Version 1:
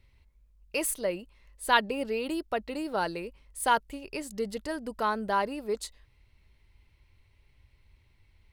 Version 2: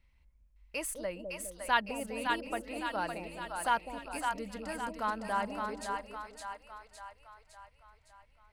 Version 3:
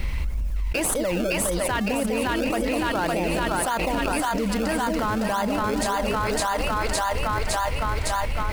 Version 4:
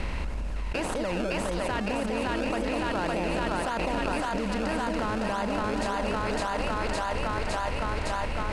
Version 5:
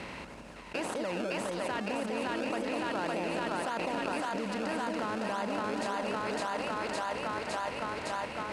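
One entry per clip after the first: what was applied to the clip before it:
fifteen-band EQ 100 Hz -10 dB, 400 Hz -10 dB, 4000 Hz -5 dB, 16000 Hz -10 dB; split-band echo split 620 Hz, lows 0.205 s, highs 0.56 s, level -4 dB; gain -4 dB
in parallel at -5 dB: decimation with a swept rate 31×, swing 100% 1.8 Hz; on the sum: fast leveller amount 100%; gain -1.5 dB
per-bin compression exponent 0.6; air absorption 85 m; gain -7.5 dB
HPF 180 Hz 12 dB/oct; gain -4 dB

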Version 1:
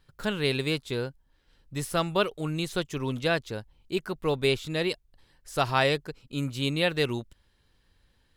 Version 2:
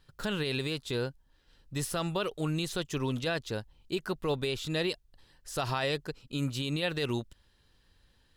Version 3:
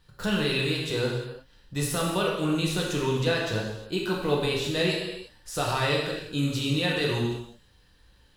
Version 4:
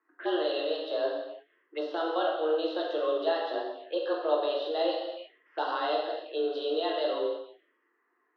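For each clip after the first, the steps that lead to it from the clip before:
bell 4700 Hz +2.5 dB 1.7 oct; notch 2200 Hz, Q 15; limiter -20.5 dBFS, peak gain reduction 11 dB
non-linear reverb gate 0.38 s falling, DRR -3.5 dB; gain +1.5 dB
mistuned SSB +160 Hz 190–3400 Hz; low-pass opened by the level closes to 1300 Hz, open at -27.5 dBFS; envelope phaser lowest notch 580 Hz, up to 2300 Hz, full sweep at -30 dBFS

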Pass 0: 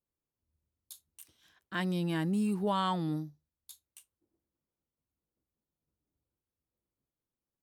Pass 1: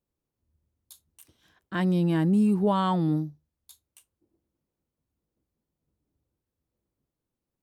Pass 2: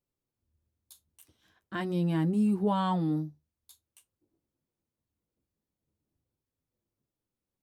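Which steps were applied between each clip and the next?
tilt shelf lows +5 dB, about 1100 Hz; gain +4 dB
flange 0.46 Hz, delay 7.1 ms, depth 3.8 ms, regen -47%

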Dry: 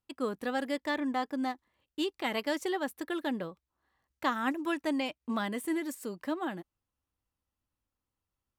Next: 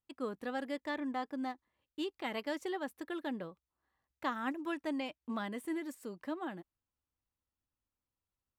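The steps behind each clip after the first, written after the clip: high shelf 4600 Hz -6 dB; gain -5.5 dB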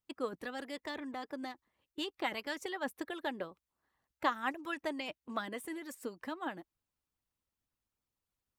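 harmonic-percussive split harmonic -11 dB; gain +5.5 dB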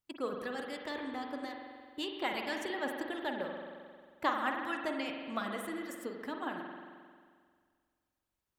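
spring tank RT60 1.9 s, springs 44 ms, chirp 25 ms, DRR 2 dB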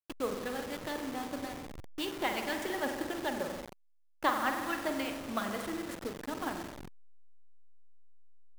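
level-crossing sampler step -39.5 dBFS; gain +2.5 dB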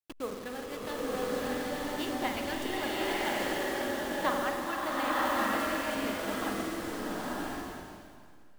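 stuck buffer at 1.75/5.16, samples 1024, times 9; bloom reverb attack 1.01 s, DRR -5.5 dB; gain -2.5 dB

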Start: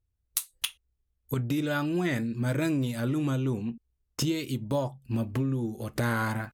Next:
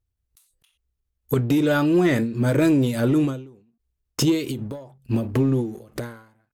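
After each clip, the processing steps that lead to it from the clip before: dynamic EQ 430 Hz, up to +7 dB, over -44 dBFS, Q 1.3; sample leveller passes 1; ending taper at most 100 dB/s; gain +3 dB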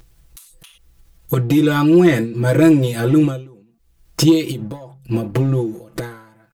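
upward compressor, threshold -34 dBFS; comb 6 ms, depth 98%; gain +2 dB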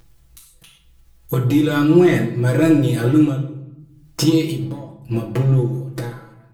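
reverb RT60 0.85 s, pre-delay 17 ms, DRR 3 dB; gain -3.5 dB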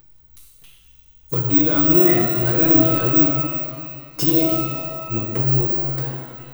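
careless resampling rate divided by 2×, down filtered, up zero stuff; shimmer reverb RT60 1.9 s, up +12 st, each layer -8 dB, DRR 2.5 dB; gain -5.5 dB

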